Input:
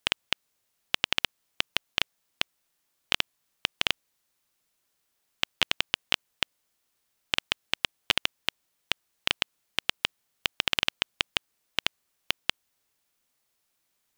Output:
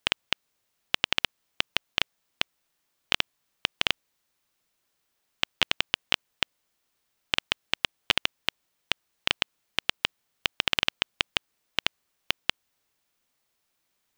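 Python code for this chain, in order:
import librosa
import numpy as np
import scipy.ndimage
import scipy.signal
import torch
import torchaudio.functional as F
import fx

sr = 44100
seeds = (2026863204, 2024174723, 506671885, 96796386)

y = fx.peak_eq(x, sr, hz=12000.0, db=-4.5, octaves=1.5)
y = y * 10.0 ** (1.5 / 20.0)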